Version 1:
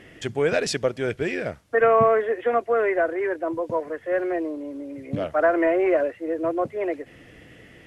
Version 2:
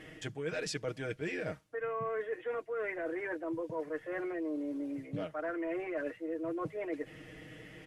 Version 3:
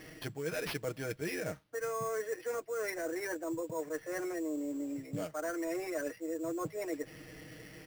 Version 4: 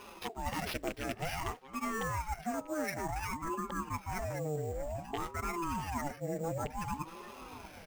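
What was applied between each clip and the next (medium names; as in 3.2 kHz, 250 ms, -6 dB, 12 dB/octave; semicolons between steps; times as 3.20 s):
comb 6.4 ms, depth 72%; dynamic bell 660 Hz, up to -6 dB, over -28 dBFS, Q 1.3; reverse; compression 10:1, threshold -29 dBFS, peak gain reduction 16.5 dB; reverse; trim -4.5 dB
sample-rate reducer 7.6 kHz, jitter 0%
rattle on loud lows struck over -38 dBFS, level -30 dBFS; echo from a far wall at 110 m, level -14 dB; ring modulator with a swept carrier 430 Hz, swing 65%, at 0.55 Hz; trim +3 dB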